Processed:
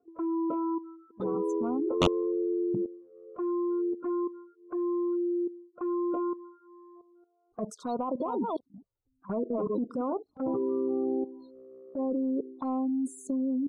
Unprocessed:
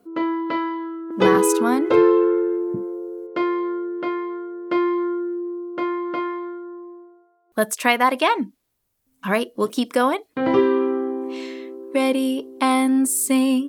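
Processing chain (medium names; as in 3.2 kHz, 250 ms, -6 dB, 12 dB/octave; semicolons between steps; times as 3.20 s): 7.96–10.13 s: chunks repeated in reverse 215 ms, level -3.5 dB; Chebyshev band-stop 1.4–3.7 kHz, order 3; spectral gate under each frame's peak -20 dB strong; transient shaper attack -8 dB, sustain +2 dB; level held to a coarse grid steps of 14 dB; integer overflow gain 11 dB; touch-sensitive flanger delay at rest 2.7 ms, full sweep at -25.5 dBFS; distance through air 120 m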